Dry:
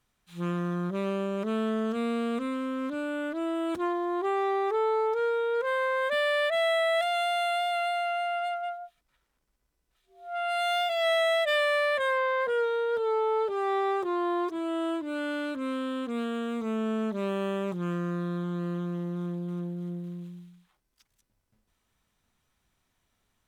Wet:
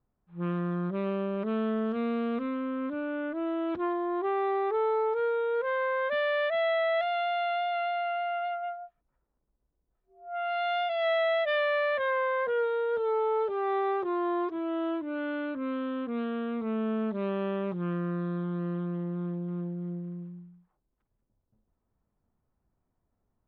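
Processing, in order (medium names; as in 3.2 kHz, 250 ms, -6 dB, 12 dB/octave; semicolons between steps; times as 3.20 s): level-controlled noise filter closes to 810 Hz, open at -22.5 dBFS; distance through air 300 m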